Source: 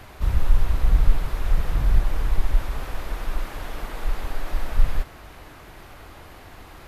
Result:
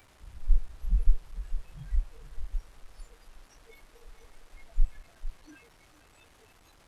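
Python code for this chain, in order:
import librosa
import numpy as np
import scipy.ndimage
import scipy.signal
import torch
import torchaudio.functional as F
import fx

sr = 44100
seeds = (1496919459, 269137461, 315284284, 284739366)

y = fx.delta_mod(x, sr, bps=64000, step_db=-27.0)
y = fx.noise_reduce_blind(y, sr, reduce_db=22)
y = y + 10.0 ** (-13.0 / 20.0) * np.pad(y, (int(453 * sr / 1000.0), 0))[:len(y)]
y = F.gain(torch.from_numpy(y), -4.5).numpy()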